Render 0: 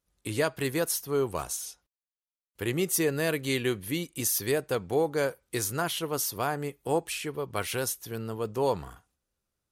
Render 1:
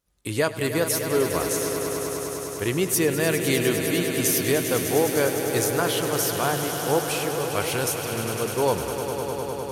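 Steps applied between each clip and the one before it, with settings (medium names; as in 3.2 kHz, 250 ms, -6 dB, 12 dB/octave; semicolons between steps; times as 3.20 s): echo with a slow build-up 101 ms, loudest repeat 5, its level -10.5 dB; trim +4 dB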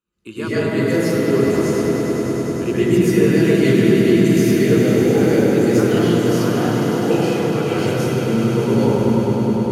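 de-hum 53.42 Hz, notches 10; small resonant body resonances 220/350/2000 Hz, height 12 dB, ringing for 60 ms; reverberation RT60 3.5 s, pre-delay 98 ms, DRR -7 dB; trim -13 dB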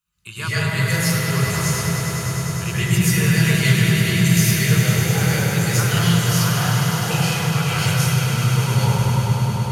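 FFT filter 170 Hz 0 dB, 250 Hz -29 dB, 960 Hz -3 dB, 11 kHz +6 dB; trim +5 dB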